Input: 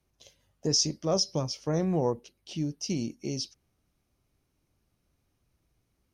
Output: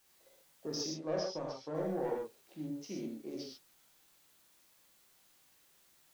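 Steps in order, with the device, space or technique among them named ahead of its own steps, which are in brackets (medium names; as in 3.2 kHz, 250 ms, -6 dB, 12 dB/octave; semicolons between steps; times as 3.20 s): local Wiener filter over 15 samples; tape answering machine (band-pass 360–3300 Hz; saturation -24.5 dBFS, distortion -15 dB; wow and flutter; white noise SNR 25 dB); 0.82–1.75 s: low-pass 5.8 kHz 12 dB/octave; gated-style reverb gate 160 ms flat, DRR -3 dB; trim -7 dB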